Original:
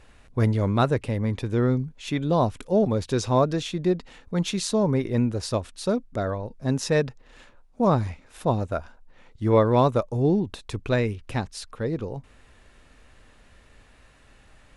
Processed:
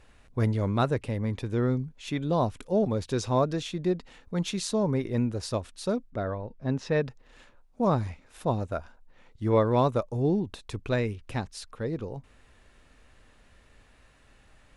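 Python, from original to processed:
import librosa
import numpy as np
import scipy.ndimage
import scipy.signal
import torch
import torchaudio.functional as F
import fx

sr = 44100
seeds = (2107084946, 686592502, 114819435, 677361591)

y = fx.lowpass(x, sr, hz=3400.0, slope=12, at=(6.1, 7.04))
y = y * librosa.db_to_amplitude(-4.0)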